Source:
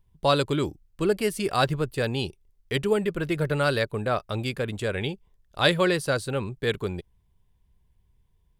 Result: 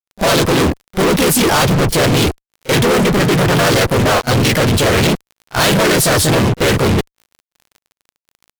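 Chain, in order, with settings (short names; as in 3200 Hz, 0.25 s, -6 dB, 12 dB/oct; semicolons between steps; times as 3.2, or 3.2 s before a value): harmoniser -3 st -2 dB, +3 st 0 dB; fuzz box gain 44 dB, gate -42 dBFS; crackle 18/s -33 dBFS; on a send: reverse echo 37 ms -21 dB; on the sum: gain +2 dB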